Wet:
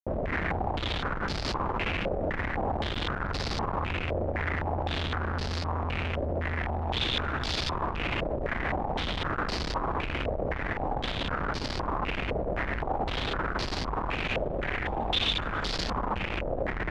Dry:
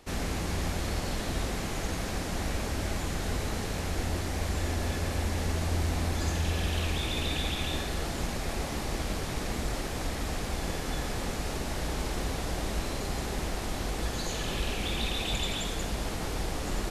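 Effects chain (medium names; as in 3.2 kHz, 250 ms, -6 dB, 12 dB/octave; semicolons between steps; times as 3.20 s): peaking EQ 85 Hz +2.5 dB 1 oct; hum notches 60/120/180/240 Hz; in parallel at -2 dB: peak limiter -27.5 dBFS, peak gain reduction 10.5 dB; on the sum: Schmitt trigger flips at -35.5 dBFS; bit crusher 5-bit; step-sequenced low-pass 3.9 Hz 590–4700 Hz; trim -7.5 dB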